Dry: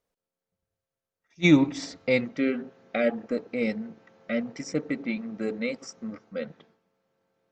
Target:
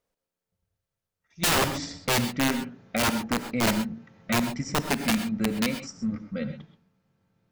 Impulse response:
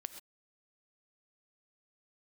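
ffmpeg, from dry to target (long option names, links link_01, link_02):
-filter_complex "[0:a]asubboost=boost=8.5:cutoff=150,aeval=exprs='(mod(8.41*val(0)+1,2)-1)/8.41':channel_layout=same[link_01];[1:a]atrim=start_sample=2205[link_02];[link_01][link_02]afir=irnorm=-1:irlink=0,volume=4.5dB"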